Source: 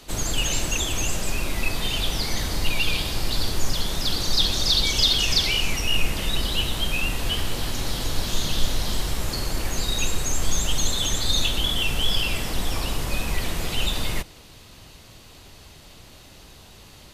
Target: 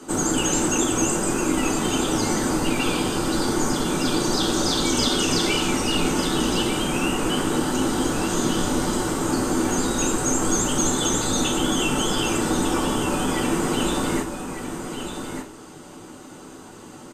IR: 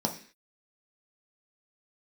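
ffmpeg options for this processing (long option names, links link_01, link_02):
-filter_complex "[0:a]aecho=1:1:1200:0.398[link_01];[1:a]atrim=start_sample=2205,asetrate=66150,aresample=44100[link_02];[link_01][link_02]afir=irnorm=-1:irlink=0"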